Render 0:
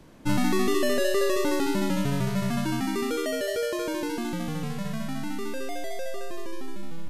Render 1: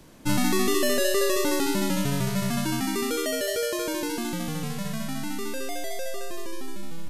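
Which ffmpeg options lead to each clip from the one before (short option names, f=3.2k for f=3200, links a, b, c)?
-af "highshelf=f=4k:g=9"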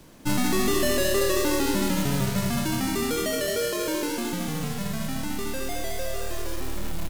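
-filter_complex "[0:a]aeval=exprs='0.266*(cos(1*acos(clip(val(0)/0.266,-1,1)))-cos(1*PI/2))+0.015*(cos(5*acos(clip(val(0)/0.266,-1,1)))-cos(5*PI/2))+0.00168*(cos(7*acos(clip(val(0)/0.266,-1,1)))-cos(7*PI/2))':c=same,acrusher=bits=3:mode=log:mix=0:aa=0.000001,asplit=8[a][b][c][d][e][f][g][h];[b]adelay=196,afreqshift=-38,volume=-11dB[i];[c]adelay=392,afreqshift=-76,volume=-15.7dB[j];[d]adelay=588,afreqshift=-114,volume=-20.5dB[k];[e]adelay=784,afreqshift=-152,volume=-25.2dB[l];[f]adelay=980,afreqshift=-190,volume=-29.9dB[m];[g]adelay=1176,afreqshift=-228,volume=-34.7dB[n];[h]adelay=1372,afreqshift=-266,volume=-39.4dB[o];[a][i][j][k][l][m][n][o]amix=inputs=8:normalize=0,volume=-1.5dB"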